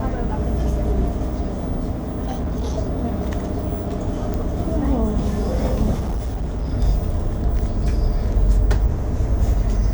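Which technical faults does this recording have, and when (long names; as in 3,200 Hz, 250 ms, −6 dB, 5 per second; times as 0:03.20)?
0:01.93–0:02.78: clipping −20 dBFS
0:04.34: click
0:05.99–0:06.71: clipping −20 dBFS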